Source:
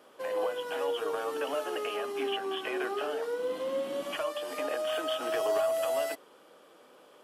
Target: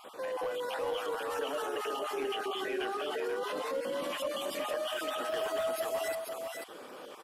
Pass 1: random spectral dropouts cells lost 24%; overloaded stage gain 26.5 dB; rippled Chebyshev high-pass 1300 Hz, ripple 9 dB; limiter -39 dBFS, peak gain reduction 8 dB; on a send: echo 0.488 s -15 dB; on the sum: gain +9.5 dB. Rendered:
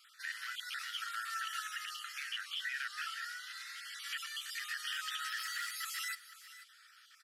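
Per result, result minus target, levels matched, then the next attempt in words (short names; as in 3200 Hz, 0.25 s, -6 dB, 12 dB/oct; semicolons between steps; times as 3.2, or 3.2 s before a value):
echo-to-direct -10.5 dB; 1000 Hz band -3.5 dB
random spectral dropouts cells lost 24%; overloaded stage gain 26.5 dB; rippled Chebyshev high-pass 1300 Hz, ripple 9 dB; limiter -39 dBFS, peak gain reduction 8 dB; on a send: echo 0.488 s -4.5 dB; on the sum: gain +9.5 dB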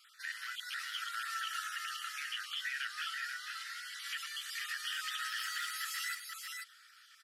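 1000 Hz band -3.0 dB
random spectral dropouts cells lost 24%; overloaded stage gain 26.5 dB; limiter -39 dBFS, peak gain reduction 12.5 dB; on a send: echo 0.488 s -4.5 dB; on the sum: gain +9.5 dB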